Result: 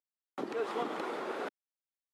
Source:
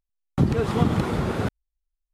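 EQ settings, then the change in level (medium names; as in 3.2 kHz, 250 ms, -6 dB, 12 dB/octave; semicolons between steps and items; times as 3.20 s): high-pass 320 Hz 24 dB/octave; low-pass 1.5 kHz 6 dB/octave; tilt EQ +2 dB/octave; -5.5 dB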